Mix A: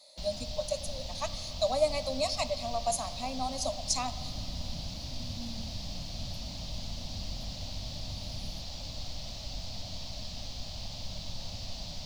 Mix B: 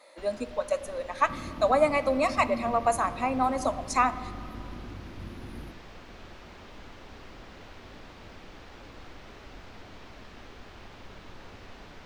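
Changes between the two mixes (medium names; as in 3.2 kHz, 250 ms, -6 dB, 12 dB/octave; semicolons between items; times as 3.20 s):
first sound -9.0 dB; second sound: entry -2.90 s; master: remove FFT filter 160 Hz 0 dB, 280 Hz -11 dB, 400 Hz -25 dB, 610 Hz -3 dB, 1.5 kHz -22 dB, 2.2 kHz -13 dB, 4.6 kHz +11 dB, 8.6 kHz +2 dB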